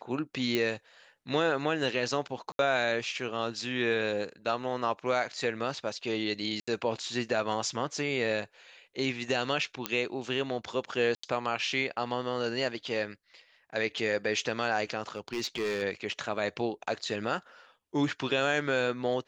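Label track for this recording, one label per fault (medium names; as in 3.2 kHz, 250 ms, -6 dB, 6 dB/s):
0.550000	0.550000	pop -14 dBFS
2.520000	2.590000	dropout 72 ms
6.600000	6.670000	dropout 75 ms
9.860000	9.860000	pop -12 dBFS
11.150000	11.230000	dropout 84 ms
15.150000	15.830000	clipped -27.5 dBFS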